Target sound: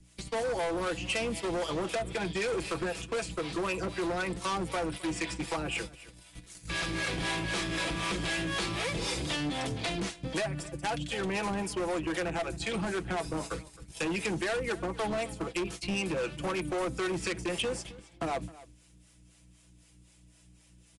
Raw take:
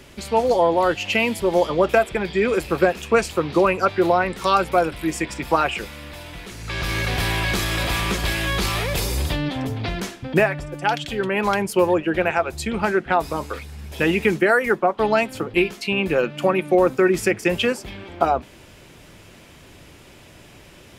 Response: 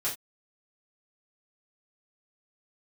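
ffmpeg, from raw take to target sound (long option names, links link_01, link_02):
-filter_complex "[0:a]aeval=exprs='val(0)+0.0251*(sin(2*PI*60*n/s)+sin(2*PI*2*60*n/s)/2+sin(2*PI*3*60*n/s)/3+sin(2*PI*4*60*n/s)/4+sin(2*PI*5*60*n/s)/5)':channel_layout=same,agate=range=-21dB:threshold=-28dB:ratio=16:detection=peak,acrossover=split=3700[link_01][link_02];[link_02]acompressor=threshold=-48dB:ratio=4:attack=1:release=60[link_03];[link_01][link_03]amix=inputs=2:normalize=0,highshelf=frequency=5200:gain=10.5,aecho=1:1:6.1:0.56,acrossover=split=180|580|7900[link_04][link_05][link_06][link_07];[link_04]acompressor=threshold=-36dB:ratio=4[link_08];[link_05]acompressor=threshold=-22dB:ratio=4[link_09];[link_06]acompressor=threshold=-29dB:ratio=4[link_10];[link_07]acompressor=threshold=-54dB:ratio=4[link_11];[link_08][link_09][link_10][link_11]amix=inputs=4:normalize=0,acrossover=split=440[link_12][link_13];[link_12]aeval=exprs='val(0)*(1-0.7/2+0.7/2*cos(2*PI*3.9*n/s))':channel_layout=same[link_14];[link_13]aeval=exprs='val(0)*(1-0.7/2-0.7/2*cos(2*PI*3.9*n/s))':channel_layout=same[link_15];[link_14][link_15]amix=inputs=2:normalize=0,volume=27dB,asoftclip=hard,volume=-27dB,aemphasis=mode=production:type=50fm,asplit=2[link_16][link_17];[link_17]aecho=0:1:264:0.112[link_18];[link_16][link_18]amix=inputs=2:normalize=0,aresample=22050,aresample=44100,volume=-1.5dB"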